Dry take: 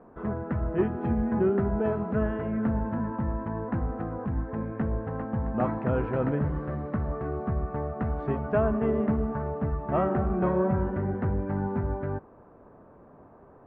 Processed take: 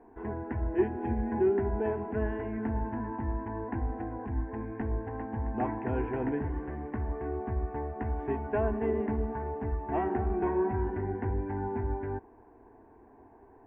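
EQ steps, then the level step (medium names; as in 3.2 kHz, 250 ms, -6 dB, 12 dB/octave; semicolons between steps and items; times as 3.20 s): static phaser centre 840 Hz, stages 8; 0.0 dB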